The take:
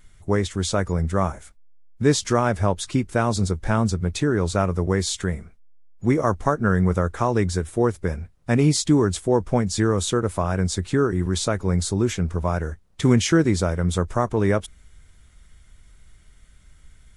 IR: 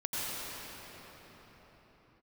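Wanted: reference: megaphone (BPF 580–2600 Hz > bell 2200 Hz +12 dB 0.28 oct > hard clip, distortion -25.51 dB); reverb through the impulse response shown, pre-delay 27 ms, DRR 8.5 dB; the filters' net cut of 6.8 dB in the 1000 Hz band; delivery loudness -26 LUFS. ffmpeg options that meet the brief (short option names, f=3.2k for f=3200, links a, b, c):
-filter_complex "[0:a]equalizer=f=1k:t=o:g=-8.5,asplit=2[a][b];[1:a]atrim=start_sample=2205,adelay=27[c];[b][c]afir=irnorm=-1:irlink=0,volume=-15.5dB[d];[a][d]amix=inputs=2:normalize=0,highpass=580,lowpass=2.6k,equalizer=f=2.2k:t=o:w=0.28:g=12,asoftclip=type=hard:threshold=-17.5dB,volume=5dB"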